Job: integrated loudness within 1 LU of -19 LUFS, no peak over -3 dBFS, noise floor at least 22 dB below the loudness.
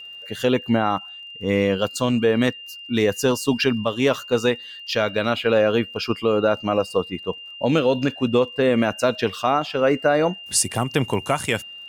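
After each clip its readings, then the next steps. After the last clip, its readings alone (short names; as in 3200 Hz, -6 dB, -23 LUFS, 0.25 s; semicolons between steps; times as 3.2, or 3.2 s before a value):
ticks 29/s; steady tone 2800 Hz; tone level -36 dBFS; loudness -21.5 LUFS; peak -7.0 dBFS; loudness target -19.0 LUFS
-> de-click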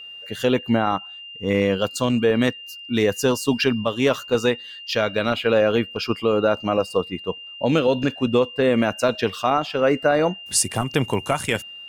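ticks 0.25/s; steady tone 2800 Hz; tone level -36 dBFS
-> notch 2800 Hz, Q 30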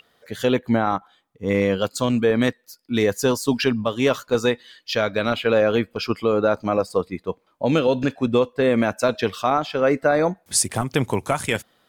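steady tone none; loudness -21.5 LUFS; peak -7.0 dBFS; loudness target -19.0 LUFS
-> gain +2.5 dB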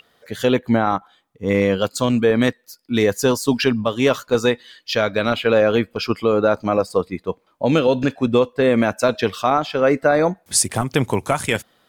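loudness -19.0 LUFS; peak -4.5 dBFS; noise floor -62 dBFS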